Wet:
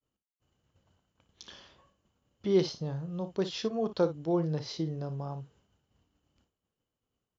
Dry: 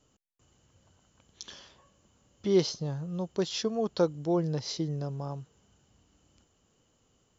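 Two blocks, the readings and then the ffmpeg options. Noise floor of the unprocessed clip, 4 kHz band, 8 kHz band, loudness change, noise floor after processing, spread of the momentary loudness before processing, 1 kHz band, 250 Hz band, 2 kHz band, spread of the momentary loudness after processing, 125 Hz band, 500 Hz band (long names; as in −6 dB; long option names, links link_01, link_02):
−70 dBFS, −4.0 dB, can't be measured, −1.0 dB, below −85 dBFS, 19 LU, −1.0 dB, −1.0 dB, −1.5 dB, 14 LU, −1.5 dB, −1.0 dB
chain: -af "lowpass=4400,agate=range=-33dB:threshold=-59dB:ratio=3:detection=peak,aecho=1:1:31|58:0.188|0.224,volume=-1.5dB"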